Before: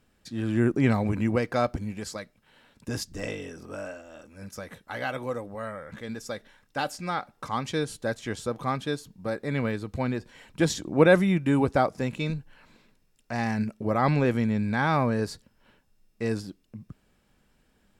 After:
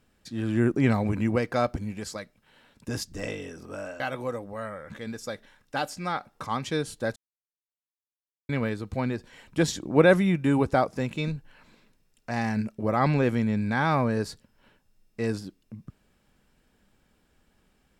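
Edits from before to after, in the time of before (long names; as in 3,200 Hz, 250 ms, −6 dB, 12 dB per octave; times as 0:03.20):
0:04.00–0:05.02: remove
0:08.18–0:09.51: silence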